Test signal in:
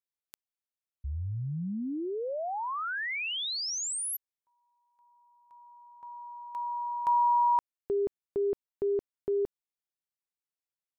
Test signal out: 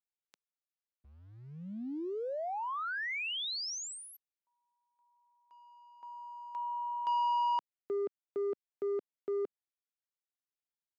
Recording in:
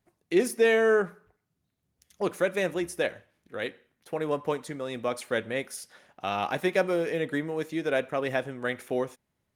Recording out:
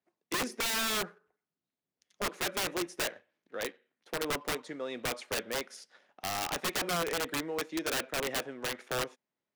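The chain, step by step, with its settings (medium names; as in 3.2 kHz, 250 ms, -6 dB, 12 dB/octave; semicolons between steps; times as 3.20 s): waveshaping leveller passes 1; three-band isolator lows -22 dB, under 200 Hz, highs -22 dB, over 7.2 kHz; integer overflow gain 19.5 dB; trim -6.5 dB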